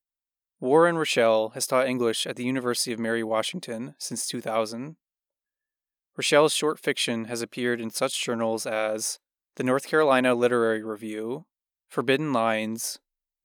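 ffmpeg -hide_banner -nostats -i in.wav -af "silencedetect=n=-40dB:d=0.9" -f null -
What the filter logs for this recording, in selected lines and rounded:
silence_start: 4.92
silence_end: 6.18 | silence_duration: 1.26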